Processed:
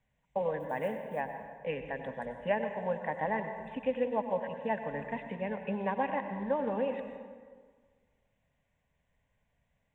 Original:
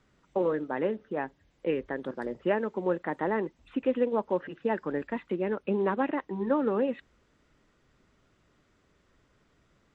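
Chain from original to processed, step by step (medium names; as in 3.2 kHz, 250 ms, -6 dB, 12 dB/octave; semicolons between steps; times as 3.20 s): 0.60–1.21 s: block-companded coder 7-bit; gate -58 dBFS, range -8 dB; static phaser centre 1.3 kHz, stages 6; plate-style reverb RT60 1.7 s, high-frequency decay 0.55×, pre-delay 80 ms, DRR 6.5 dB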